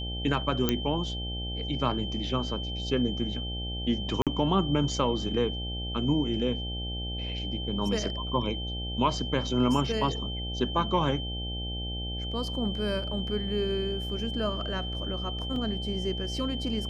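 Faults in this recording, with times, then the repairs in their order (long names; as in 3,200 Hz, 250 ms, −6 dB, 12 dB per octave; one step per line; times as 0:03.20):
mains buzz 60 Hz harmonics 14 −35 dBFS
whistle 3,100 Hz −36 dBFS
0:00.69: click −9 dBFS
0:04.22–0:04.27: drop-out 47 ms
0:15.56: drop-out 2.3 ms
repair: click removal
notch filter 3,100 Hz, Q 30
hum removal 60 Hz, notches 14
repair the gap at 0:04.22, 47 ms
repair the gap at 0:15.56, 2.3 ms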